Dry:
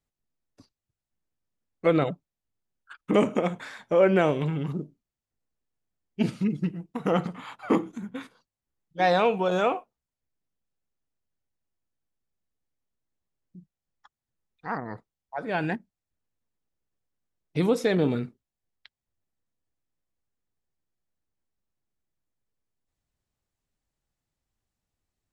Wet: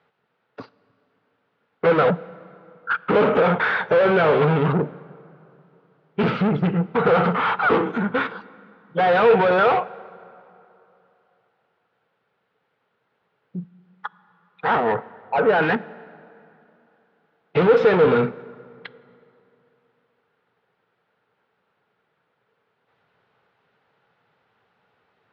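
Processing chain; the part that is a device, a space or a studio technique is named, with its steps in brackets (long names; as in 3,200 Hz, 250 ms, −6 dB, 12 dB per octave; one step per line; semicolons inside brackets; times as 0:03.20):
0:14.76–0:15.62: Bessel low-pass filter 1,600 Hz, order 8
overdrive pedal into a guitar cabinet (mid-hump overdrive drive 36 dB, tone 2,200 Hz, clips at −9.5 dBFS; loudspeaker in its box 100–3,600 Hz, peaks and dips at 120 Hz +6 dB, 170 Hz +5 dB, 310 Hz −5 dB, 450 Hz +10 dB, 860 Hz +4 dB, 1,400 Hz +8 dB)
dense smooth reverb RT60 3 s, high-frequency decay 0.65×, DRR 19.5 dB
level −4.5 dB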